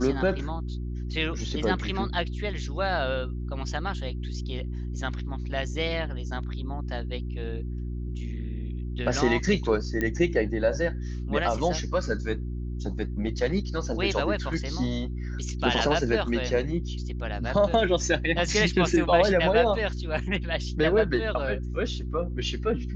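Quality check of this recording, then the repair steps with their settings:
mains hum 60 Hz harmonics 6 −32 dBFS
0:10.01: click −15 dBFS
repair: click removal
hum removal 60 Hz, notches 6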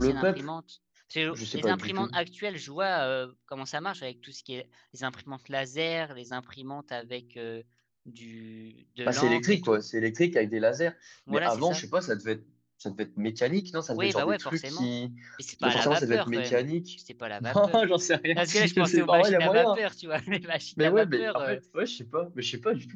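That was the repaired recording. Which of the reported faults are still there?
none of them is left

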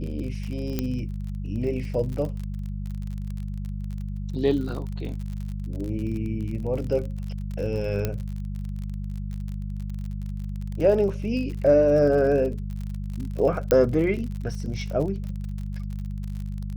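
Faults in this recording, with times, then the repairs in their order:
surface crackle 43 per second −32 dBFS
mains hum 50 Hz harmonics 4 −31 dBFS
0:00.79: click −12 dBFS
0:08.05: click −12 dBFS
0:13.71: click −8 dBFS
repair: click removal
hum removal 50 Hz, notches 4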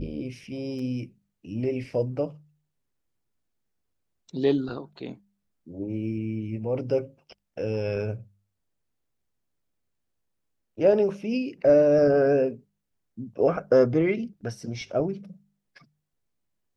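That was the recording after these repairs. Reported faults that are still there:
0:00.79: click

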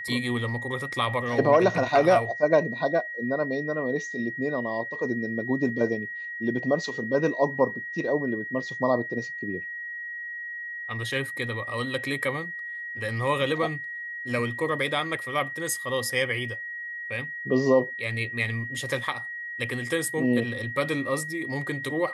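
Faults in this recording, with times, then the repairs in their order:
whistle 1,900 Hz −33 dBFS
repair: notch filter 1,900 Hz, Q 30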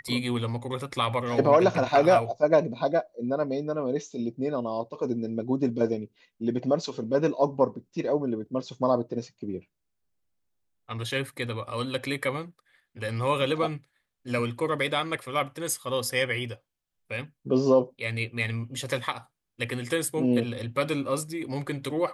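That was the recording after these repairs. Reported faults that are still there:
none of them is left

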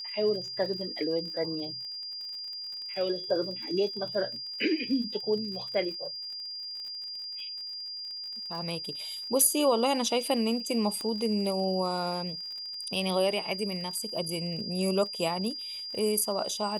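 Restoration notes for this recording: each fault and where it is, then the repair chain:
surface crackle 44 per second −39 dBFS
whistle 4,800 Hz −36 dBFS
0:11.01: click −22 dBFS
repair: click removal
notch filter 4,800 Hz, Q 30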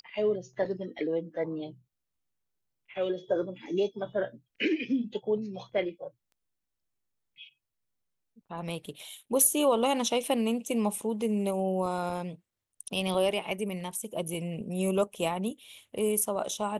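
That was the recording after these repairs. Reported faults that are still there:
0:11.01: click

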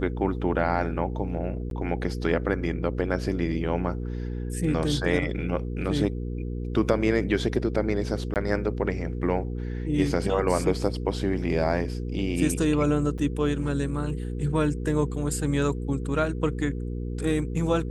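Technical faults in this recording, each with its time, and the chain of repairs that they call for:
mains hum 60 Hz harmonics 8 −31 dBFS
0:01.70–0:01.71: drop-out 12 ms
0:08.34–0:08.36: drop-out 18 ms
0:13.18–0:13.19: drop-out 5.4 ms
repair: hum removal 60 Hz, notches 8
repair the gap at 0:01.70, 12 ms
repair the gap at 0:08.34, 18 ms
repair the gap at 0:13.18, 5.4 ms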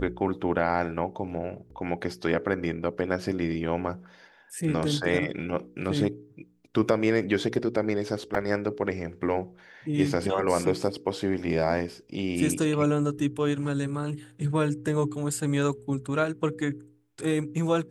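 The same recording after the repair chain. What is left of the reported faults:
none of them is left

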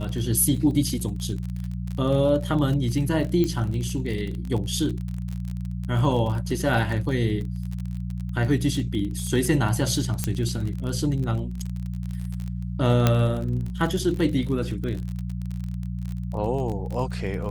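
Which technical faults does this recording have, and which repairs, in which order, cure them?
surface crackle 34 per second −29 dBFS
mains hum 60 Hz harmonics 3 −30 dBFS
0:03.44: click −13 dBFS
0:10.24: click −9 dBFS
0:13.07: click −5 dBFS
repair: click removal
hum removal 60 Hz, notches 3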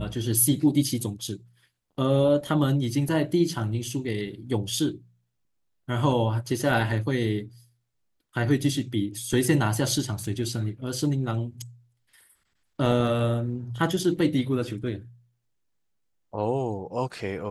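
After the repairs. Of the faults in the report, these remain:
0:10.24: click
0:13.07: click

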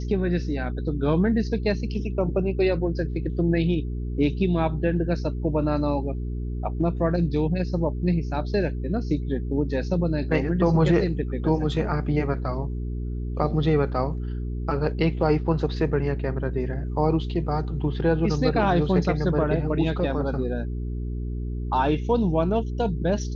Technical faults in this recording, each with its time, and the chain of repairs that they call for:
mains hum 60 Hz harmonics 7 −29 dBFS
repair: hum removal 60 Hz, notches 7

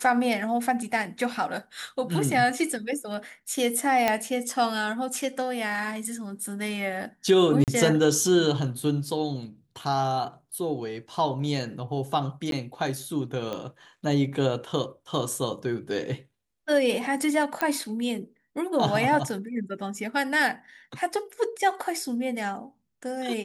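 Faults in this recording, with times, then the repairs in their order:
0:04.08: click −8 dBFS
0:07.64–0:07.68: drop-out 38 ms
0:12.51–0:12.52: drop-out 12 ms
0:13.53: click −20 dBFS
0:17.61: click −12 dBFS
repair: click removal
repair the gap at 0:07.64, 38 ms
repair the gap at 0:12.51, 12 ms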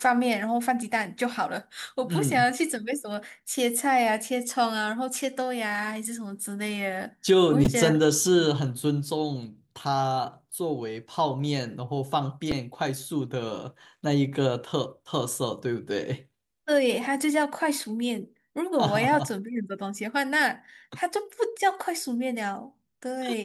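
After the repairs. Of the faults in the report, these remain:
none of them is left

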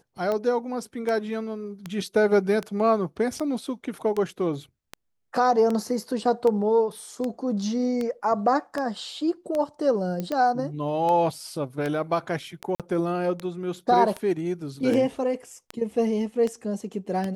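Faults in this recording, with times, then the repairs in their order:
scratch tick 78 rpm −16 dBFS
0:10.20: click −17 dBFS
0:12.75–0:12.80: drop-out 47 ms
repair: click removal
repair the gap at 0:12.75, 47 ms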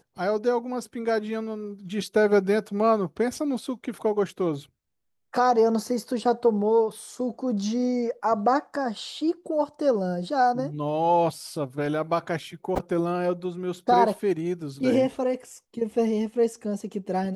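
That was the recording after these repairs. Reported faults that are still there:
none of them is left

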